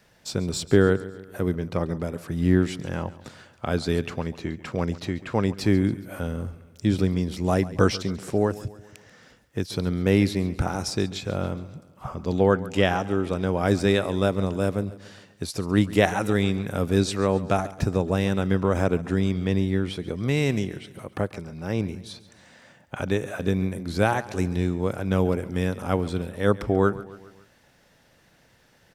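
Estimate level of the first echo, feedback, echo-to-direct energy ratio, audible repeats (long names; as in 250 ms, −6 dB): −17.5 dB, 52%, −16.0 dB, 4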